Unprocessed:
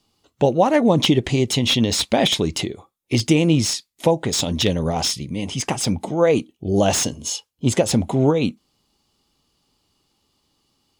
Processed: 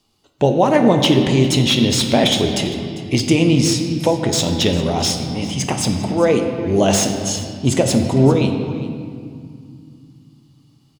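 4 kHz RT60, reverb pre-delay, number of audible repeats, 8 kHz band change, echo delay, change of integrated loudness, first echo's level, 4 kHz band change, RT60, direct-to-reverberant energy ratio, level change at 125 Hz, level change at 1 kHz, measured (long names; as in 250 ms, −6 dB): 1.6 s, 3 ms, 1, +2.0 dB, 398 ms, +3.0 dB, −17.0 dB, +2.5 dB, 2.3 s, 4.0 dB, +4.0 dB, +2.5 dB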